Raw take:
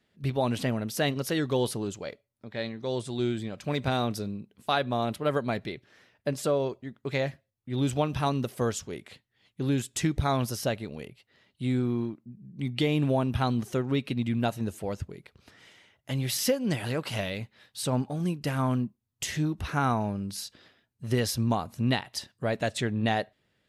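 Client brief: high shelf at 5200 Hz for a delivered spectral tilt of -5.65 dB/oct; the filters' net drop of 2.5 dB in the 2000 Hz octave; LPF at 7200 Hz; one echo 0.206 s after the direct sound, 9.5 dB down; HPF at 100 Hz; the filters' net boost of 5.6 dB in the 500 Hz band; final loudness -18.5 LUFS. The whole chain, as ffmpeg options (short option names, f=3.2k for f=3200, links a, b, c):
-af "highpass=100,lowpass=7.2k,equalizer=f=500:t=o:g=7,equalizer=f=2k:t=o:g=-4.5,highshelf=f=5.2k:g=6,aecho=1:1:206:0.335,volume=8.5dB"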